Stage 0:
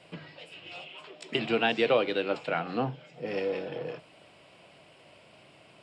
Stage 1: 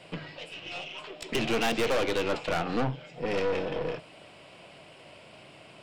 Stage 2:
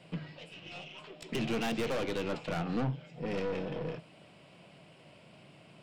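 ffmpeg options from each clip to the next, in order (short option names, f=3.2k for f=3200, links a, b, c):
-af "aeval=exprs='(tanh(39.8*val(0)+0.6)-tanh(0.6))/39.8':c=same,volume=8dB"
-af "equalizer=f=170:w=1.1:g=10,volume=-8dB"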